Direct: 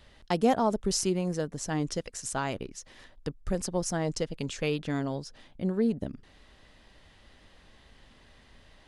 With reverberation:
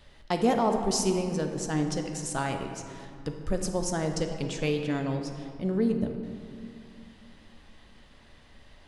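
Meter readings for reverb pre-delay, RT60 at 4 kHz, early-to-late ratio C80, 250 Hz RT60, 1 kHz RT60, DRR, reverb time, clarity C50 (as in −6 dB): 3 ms, 1.4 s, 7.0 dB, 3.2 s, 2.5 s, 4.0 dB, 2.5 s, 6.0 dB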